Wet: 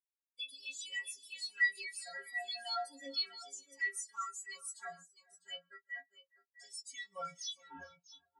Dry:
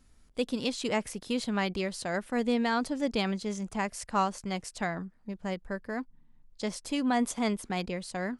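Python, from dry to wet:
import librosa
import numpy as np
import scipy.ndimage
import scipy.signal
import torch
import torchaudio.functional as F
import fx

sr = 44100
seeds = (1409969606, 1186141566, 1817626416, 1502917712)

y = fx.tape_stop_end(x, sr, length_s=1.65)
y = np.diff(y, prepend=0.0)
y = fx.stiff_resonator(y, sr, f0_hz=82.0, decay_s=0.78, stiffness=0.03)
y = fx.leveller(y, sr, passes=5)
y = fx.echo_multitap(y, sr, ms=(135, 411, 651), db=(-17.5, -10.5, -6.5))
y = fx.spectral_expand(y, sr, expansion=2.5)
y = y * 10.0 ** (14.0 / 20.0)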